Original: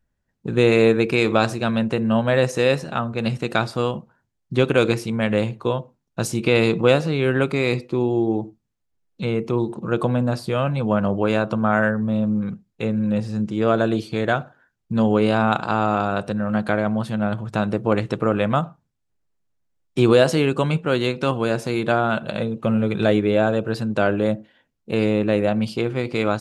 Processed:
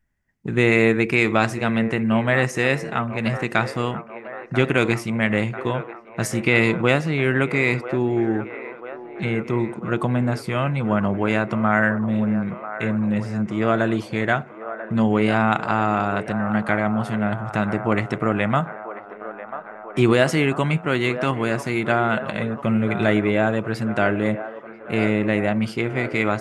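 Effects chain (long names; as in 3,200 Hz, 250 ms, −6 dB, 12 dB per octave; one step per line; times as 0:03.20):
thirty-one-band graphic EQ 500 Hz −7 dB, 2,000 Hz +11 dB, 4,000 Hz −7 dB
delay with a band-pass on its return 991 ms, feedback 67%, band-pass 820 Hz, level −10.5 dB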